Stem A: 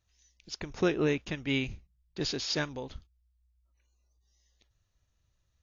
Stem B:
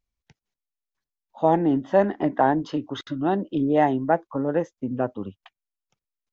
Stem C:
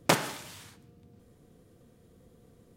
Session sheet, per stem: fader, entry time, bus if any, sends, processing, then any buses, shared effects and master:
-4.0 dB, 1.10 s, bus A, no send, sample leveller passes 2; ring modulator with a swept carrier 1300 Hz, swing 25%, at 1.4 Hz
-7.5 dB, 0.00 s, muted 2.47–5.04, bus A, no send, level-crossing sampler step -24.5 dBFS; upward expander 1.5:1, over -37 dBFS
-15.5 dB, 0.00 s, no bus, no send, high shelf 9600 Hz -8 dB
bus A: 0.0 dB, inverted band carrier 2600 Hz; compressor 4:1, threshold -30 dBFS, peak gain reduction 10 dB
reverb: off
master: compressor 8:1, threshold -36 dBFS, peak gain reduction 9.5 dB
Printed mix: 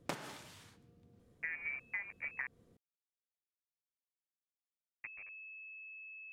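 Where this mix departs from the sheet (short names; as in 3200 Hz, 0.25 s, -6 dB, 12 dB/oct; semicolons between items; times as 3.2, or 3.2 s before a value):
stem A: muted; stem B -7.5 dB -> -14.5 dB; stem C -15.5 dB -> -8.0 dB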